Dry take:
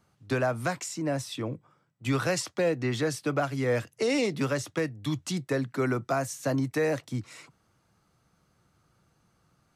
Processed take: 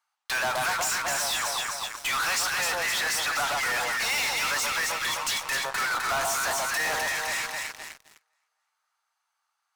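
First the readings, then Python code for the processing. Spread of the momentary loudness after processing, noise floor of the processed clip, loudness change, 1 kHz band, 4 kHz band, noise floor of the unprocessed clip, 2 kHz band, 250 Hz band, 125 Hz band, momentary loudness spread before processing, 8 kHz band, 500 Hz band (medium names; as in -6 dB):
5 LU, -80 dBFS, +3.5 dB, +7.5 dB, +11.5 dB, -70 dBFS, +10.0 dB, -17.5 dB, -17.5 dB, 8 LU, +11.0 dB, -7.5 dB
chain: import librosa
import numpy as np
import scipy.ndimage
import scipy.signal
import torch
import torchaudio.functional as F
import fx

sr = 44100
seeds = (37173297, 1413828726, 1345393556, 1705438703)

p1 = scipy.signal.sosfilt(scipy.signal.cheby1(4, 1.0, 830.0, 'highpass', fs=sr, output='sos'), x)
p2 = fx.echo_alternate(p1, sr, ms=128, hz=1100.0, feedback_pct=69, wet_db=-3)
p3 = fx.fuzz(p2, sr, gain_db=50.0, gate_db=-58.0)
p4 = p2 + (p3 * librosa.db_to_amplitude(-7.5))
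y = p4 * librosa.db_to_amplitude(-6.5)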